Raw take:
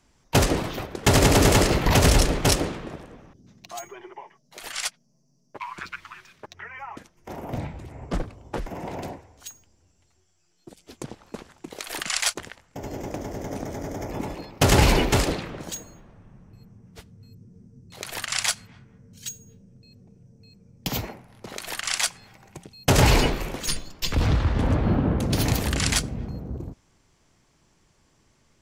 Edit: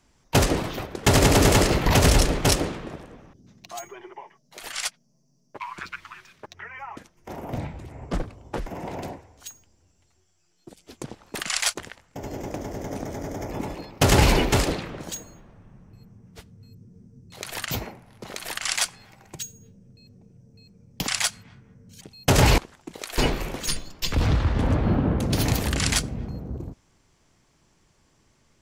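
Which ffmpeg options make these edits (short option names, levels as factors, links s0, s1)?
-filter_complex "[0:a]asplit=8[s0][s1][s2][s3][s4][s5][s6][s7];[s0]atrim=end=11.352[s8];[s1]atrim=start=11.948:end=18.312[s9];[s2]atrim=start=20.928:end=22.612[s10];[s3]atrim=start=19.248:end=20.932[s11];[s4]atrim=start=18.308:end=19.252[s12];[s5]atrim=start=22.608:end=23.182[s13];[s6]atrim=start=11.348:end=11.952[s14];[s7]atrim=start=23.178[s15];[s8][s9]acrossfade=d=0.004:c1=hsin:c2=hsin[s16];[s16][s10]acrossfade=d=0.004:c1=hsin:c2=hsin[s17];[s17][s11]acrossfade=d=0.004:c1=hsin:c2=hsin[s18];[s18][s12]acrossfade=d=0.004:c1=hsin:c2=hsin[s19];[s19][s13]acrossfade=d=0.004:c1=hsin:c2=hsin[s20];[s20][s14]acrossfade=d=0.004:c1=hsin:c2=hsin[s21];[s21][s15]acrossfade=d=0.004:c1=hsin:c2=hsin"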